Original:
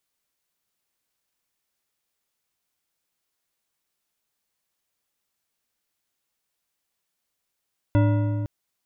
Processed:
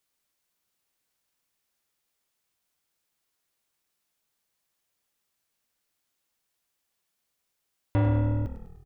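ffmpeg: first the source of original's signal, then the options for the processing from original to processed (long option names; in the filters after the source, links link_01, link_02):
-f lavfi -i "aevalsrc='0.168*pow(10,-3*t/2.99)*sin(2*PI*107*t)+0.0944*pow(10,-3*t/2.206)*sin(2*PI*295*t)+0.0531*pow(10,-3*t/1.802)*sin(2*PI*578.2*t)+0.0299*pow(10,-3*t/1.55)*sin(2*PI*955.8*t)+0.0168*pow(10,-3*t/1.374)*sin(2*PI*1427.4*t)+0.00944*pow(10,-3*t/1.243)*sin(2*PI*1994.5*t)+0.00531*pow(10,-3*t/1.141)*sin(2*PI*2654.7*t)+0.00299*pow(10,-3*t/1.058)*sin(2*PI*3410.1*t)':duration=0.51:sample_rate=44100"
-filter_complex "[0:a]asoftclip=type=tanh:threshold=-18dB,asplit=2[link_01][link_02];[link_02]asplit=6[link_03][link_04][link_05][link_06][link_07][link_08];[link_03]adelay=100,afreqshift=-39,volume=-11dB[link_09];[link_04]adelay=200,afreqshift=-78,volume=-15.9dB[link_10];[link_05]adelay=300,afreqshift=-117,volume=-20.8dB[link_11];[link_06]adelay=400,afreqshift=-156,volume=-25.6dB[link_12];[link_07]adelay=500,afreqshift=-195,volume=-30.5dB[link_13];[link_08]adelay=600,afreqshift=-234,volume=-35.4dB[link_14];[link_09][link_10][link_11][link_12][link_13][link_14]amix=inputs=6:normalize=0[link_15];[link_01][link_15]amix=inputs=2:normalize=0"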